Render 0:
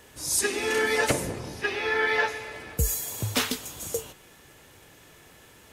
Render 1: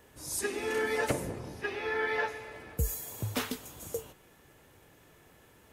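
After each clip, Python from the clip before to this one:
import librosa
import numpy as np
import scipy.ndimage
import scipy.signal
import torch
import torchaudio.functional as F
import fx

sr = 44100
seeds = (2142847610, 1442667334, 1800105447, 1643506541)

y = fx.peak_eq(x, sr, hz=5200.0, db=-7.0, octaves=2.8)
y = y * 10.0 ** (-4.5 / 20.0)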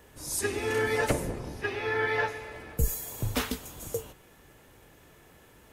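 y = fx.octave_divider(x, sr, octaves=2, level_db=-4.0)
y = y * 10.0 ** (3.0 / 20.0)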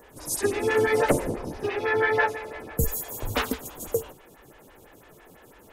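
y = fx.stagger_phaser(x, sr, hz=6.0)
y = y * 10.0 ** (7.5 / 20.0)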